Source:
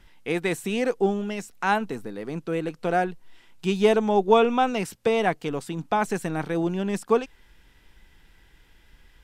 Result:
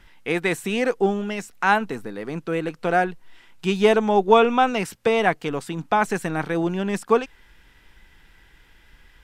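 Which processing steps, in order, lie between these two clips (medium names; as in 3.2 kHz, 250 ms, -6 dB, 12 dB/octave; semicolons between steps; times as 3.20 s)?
peaking EQ 1.6 kHz +4.5 dB 1.8 oct; trim +1.5 dB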